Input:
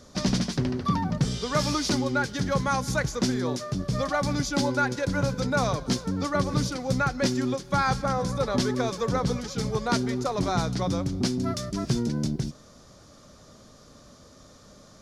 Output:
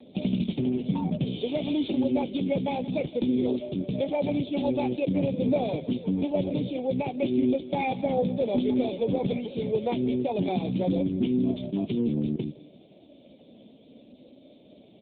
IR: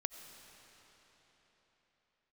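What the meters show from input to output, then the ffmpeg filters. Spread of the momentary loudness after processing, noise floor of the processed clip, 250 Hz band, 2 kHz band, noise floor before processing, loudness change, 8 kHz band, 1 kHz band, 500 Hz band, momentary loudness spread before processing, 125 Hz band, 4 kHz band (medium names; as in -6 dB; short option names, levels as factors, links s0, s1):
4 LU, -54 dBFS, +2.0 dB, -11.5 dB, -52 dBFS, -0.5 dB, under -40 dB, -6.5 dB, +1.5 dB, 4 LU, -4.5 dB, -8.5 dB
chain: -filter_complex "[0:a]highpass=230,afftfilt=real='re*(1-between(b*sr/4096,1000,2100))':imag='im*(1-between(b*sr/4096,1000,2100))':win_size=4096:overlap=0.75,equalizer=f=990:w=0.98:g=-9.5,aphaser=in_gain=1:out_gain=1:delay=4.4:decay=0.21:speed=0.18:type=triangular,alimiter=limit=0.0794:level=0:latency=1:release=83,asplit=2[s0][s1];[s1]aecho=0:1:172|344|516:0.1|0.04|0.016[s2];[s0][s2]amix=inputs=2:normalize=0,volume=2.37" -ar 8000 -c:a libopencore_amrnb -b:a 5900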